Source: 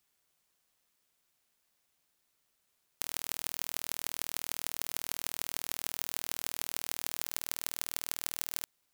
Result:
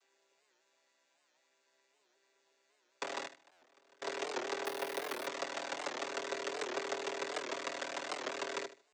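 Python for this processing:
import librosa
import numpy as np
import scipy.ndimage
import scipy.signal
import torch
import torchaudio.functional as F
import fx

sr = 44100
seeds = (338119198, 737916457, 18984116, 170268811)

y = fx.chord_vocoder(x, sr, chord='major triad', root=48)
y = scipy.signal.sosfilt(scipy.signal.butter(4, 370.0, 'highpass', fs=sr, output='sos'), y)
y = y + 0.73 * np.pad(y, (int(7.2 * sr / 1000.0), 0))[:len(y)]
y = fx.gate_flip(y, sr, shuts_db=-36.0, range_db=-28, at=(3.25, 4.02))
y = fx.echo_feedback(y, sr, ms=76, feedback_pct=24, wet_db=-14)
y = fx.resample_bad(y, sr, factor=3, down='filtered', up='hold', at=(4.65, 5.27))
y = fx.buffer_glitch(y, sr, at_s=(3.52,), block=512, repeats=8)
y = fx.record_warp(y, sr, rpm=78.0, depth_cents=160.0)
y = y * librosa.db_to_amplitude(4.5)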